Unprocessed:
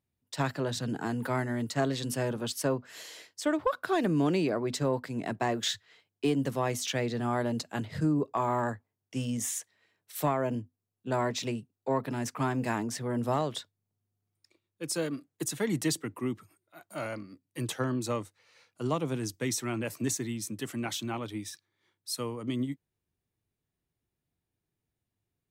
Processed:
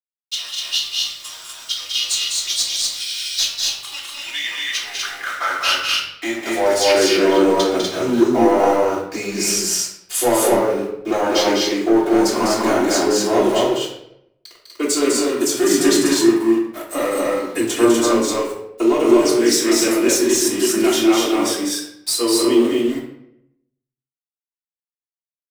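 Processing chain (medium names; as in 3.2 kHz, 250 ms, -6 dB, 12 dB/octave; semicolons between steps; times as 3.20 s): pitch bend over the whole clip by -5.5 st ending unshifted; recorder AGC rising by 13 dB/s; treble shelf 4.1 kHz +7.5 dB; small samples zeroed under -43 dBFS; high-pass sweep 3.7 kHz -> 380 Hz, 3.93–7.15 s; waveshaping leveller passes 2; loudspeakers at several distances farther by 69 m -5 dB, 84 m -2 dB; reverberation RT60 0.75 s, pre-delay 3 ms, DRR -7.5 dB; trim -3 dB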